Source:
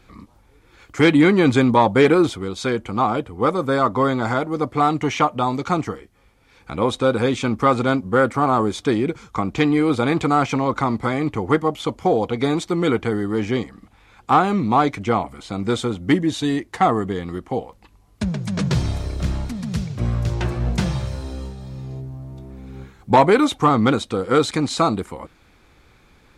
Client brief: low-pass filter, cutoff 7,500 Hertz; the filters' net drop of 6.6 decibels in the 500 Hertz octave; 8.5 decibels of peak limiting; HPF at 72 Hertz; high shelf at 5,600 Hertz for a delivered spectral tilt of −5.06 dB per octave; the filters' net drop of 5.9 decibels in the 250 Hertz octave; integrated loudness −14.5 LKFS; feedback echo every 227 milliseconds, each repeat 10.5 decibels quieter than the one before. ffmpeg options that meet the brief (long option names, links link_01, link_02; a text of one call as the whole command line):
ffmpeg -i in.wav -af "highpass=72,lowpass=7500,equalizer=frequency=250:width_type=o:gain=-5.5,equalizer=frequency=500:width_type=o:gain=-6.5,highshelf=frequency=5600:gain=-8,alimiter=limit=-14.5dB:level=0:latency=1,aecho=1:1:227|454|681:0.299|0.0896|0.0269,volume=12dB" out.wav